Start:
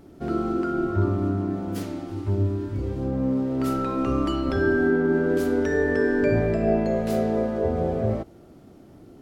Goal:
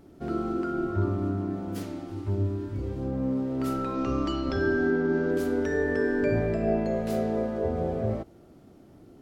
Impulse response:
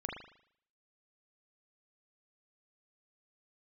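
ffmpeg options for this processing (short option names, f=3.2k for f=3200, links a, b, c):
-filter_complex "[0:a]asettb=1/sr,asplit=3[a][b][c];[a]atrim=end=3.944[d];[b]atrim=start=3.94:end=5.31,asetpts=PTS-STARTPTS,afade=t=in:d=0.004:c=qsin,afade=t=out:st=1.366:d=0.004:c=qsin,lowpass=f=5.7k:t=q:w=1.9[e];[c]atrim=start=5.306[f];[d][e]acrossfade=d=0.004:c1=hsin:c2=qsin[g];[g][f]acrossfade=d=0.004:c1=qsin:c2=hsin,volume=-4dB"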